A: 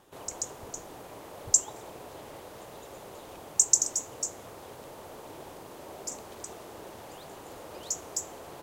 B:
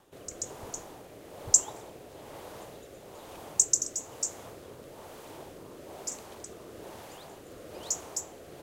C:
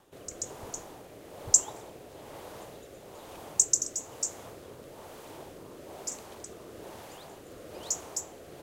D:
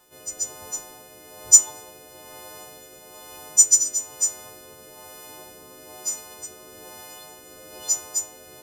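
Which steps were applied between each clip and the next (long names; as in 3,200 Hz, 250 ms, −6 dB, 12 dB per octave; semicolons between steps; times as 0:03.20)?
rotating-speaker cabinet horn 1.1 Hz; level +1.5 dB
no processing that can be heard
every partial snapped to a pitch grid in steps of 3 semitones; log-companded quantiser 6 bits; level −1 dB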